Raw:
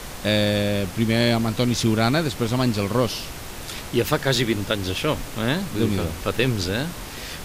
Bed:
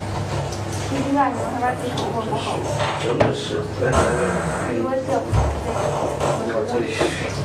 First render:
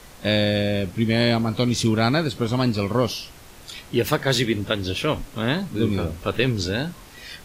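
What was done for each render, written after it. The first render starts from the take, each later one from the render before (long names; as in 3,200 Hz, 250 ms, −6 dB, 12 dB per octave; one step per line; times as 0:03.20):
noise reduction from a noise print 10 dB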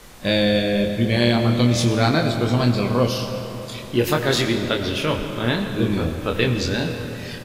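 double-tracking delay 25 ms −5.5 dB
comb and all-pass reverb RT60 3.8 s, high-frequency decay 0.6×, pre-delay 55 ms, DRR 6 dB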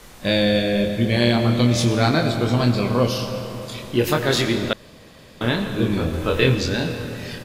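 0:04.73–0:05.41: fill with room tone
0:06.11–0:06.55: double-tracking delay 23 ms −2 dB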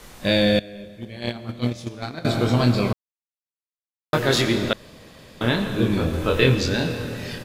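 0:00.59–0:02.25: noise gate −15 dBFS, range −18 dB
0:02.93–0:04.13: silence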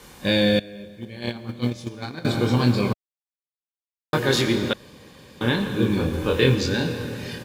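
log-companded quantiser 8 bits
notch comb filter 660 Hz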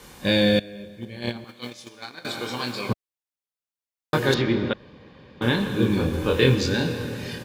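0:01.44–0:02.89: high-pass filter 1,100 Hz 6 dB per octave
0:04.34–0:05.42: high-frequency loss of the air 270 metres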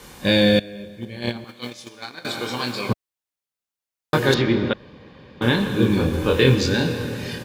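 level +3 dB
brickwall limiter −3 dBFS, peak gain reduction 2 dB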